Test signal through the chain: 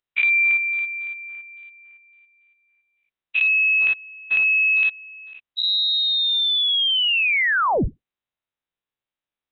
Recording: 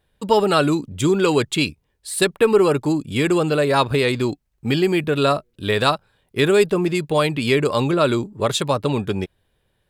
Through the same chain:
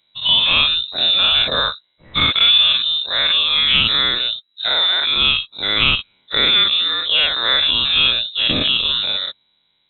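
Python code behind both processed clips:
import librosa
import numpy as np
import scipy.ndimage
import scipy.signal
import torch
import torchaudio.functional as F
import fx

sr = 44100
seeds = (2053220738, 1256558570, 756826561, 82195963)

y = fx.spec_dilate(x, sr, span_ms=120)
y = fx.freq_invert(y, sr, carrier_hz=3900)
y = F.gain(torch.from_numpy(y), -2.5).numpy()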